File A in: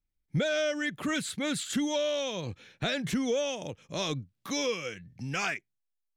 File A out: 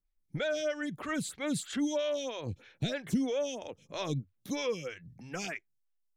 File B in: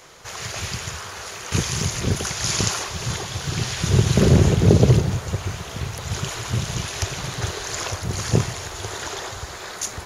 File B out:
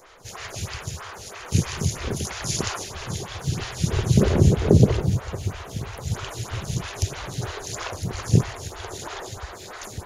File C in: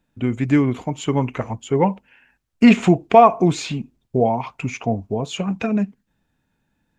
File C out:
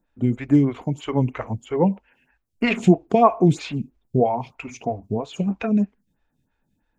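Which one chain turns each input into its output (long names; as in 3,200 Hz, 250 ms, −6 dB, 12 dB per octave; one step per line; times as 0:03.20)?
low-shelf EQ 160 Hz +7 dB
phaser with staggered stages 3.1 Hz
level −1 dB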